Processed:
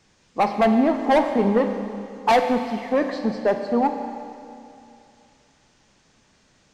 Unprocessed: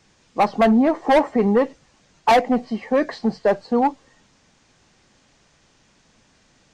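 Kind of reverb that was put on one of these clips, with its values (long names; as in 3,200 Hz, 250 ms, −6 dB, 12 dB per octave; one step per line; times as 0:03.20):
four-comb reverb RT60 2.6 s, combs from 30 ms, DRR 6.5 dB
level −2.5 dB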